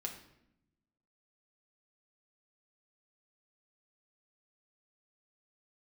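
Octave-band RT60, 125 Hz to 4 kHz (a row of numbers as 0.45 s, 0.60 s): 1.4 s, 1.4 s, 0.85 s, 0.75 s, 0.70 s, 0.60 s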